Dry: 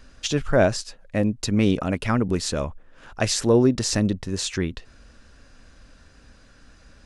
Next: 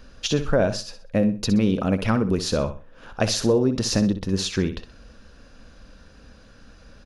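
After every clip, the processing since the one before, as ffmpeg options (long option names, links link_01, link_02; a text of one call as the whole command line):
ffmpeg -i in.wav -filter_complex "[0:a]equalizer=frequency=200:width_type=o:width=0.33:gain=5,equalizer=frequency=500:width_type=o:width=0.33:gain=5,equalizer=frequency=2000:width_type=o:width=0.33:gain=-5,equalizer=frequency=8000:width_type=o:width=0.33:gain=-12,acompressor=threshold=-18dB:ratio=6,asplit=2[link_01][link_02];[link_02]aecho=0:1:63|126|189:0.282|0.0817|0.0237[link_03];[link_01][link_03]amix=inputs=2:normalize=0,volume=2dB" out.wav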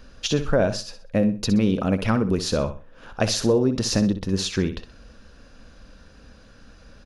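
ffmpeg -i in.wav -af anull out.wav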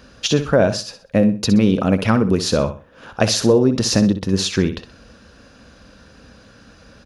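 ffmpeg -i in.wav -af "highpass=73,volume=5.5dB" out.wav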